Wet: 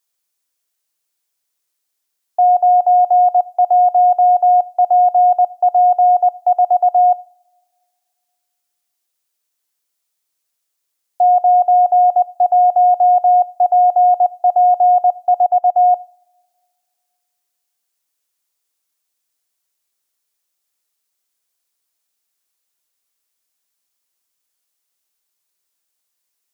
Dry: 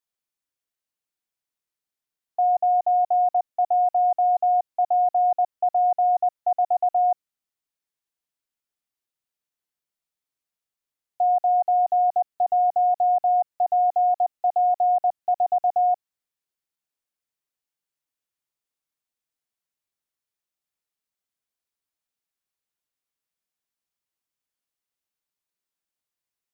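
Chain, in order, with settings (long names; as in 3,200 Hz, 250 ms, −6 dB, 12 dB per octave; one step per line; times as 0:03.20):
bass and treble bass −9 dB, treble +7 dB
convolution reverb, pre-delay 3 ms, DRR 19 dB
0:15.46–0:15.91: expander for the loud parts 1.5 to 1, over −33 dBFS
level +8.5 dB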